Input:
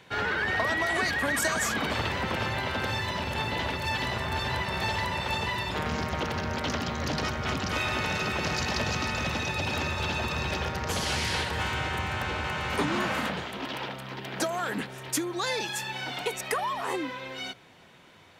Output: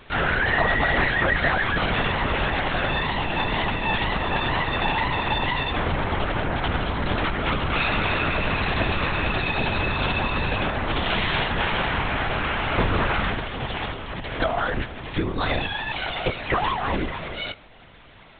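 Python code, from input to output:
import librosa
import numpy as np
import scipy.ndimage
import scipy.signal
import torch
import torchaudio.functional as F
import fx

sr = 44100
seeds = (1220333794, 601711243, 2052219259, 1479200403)

y = fx.lpc_vocoder(x, sr, seeds[0], excitation='whisper', order=10)
y = y * 10.0 ** (6.5 / 20.0)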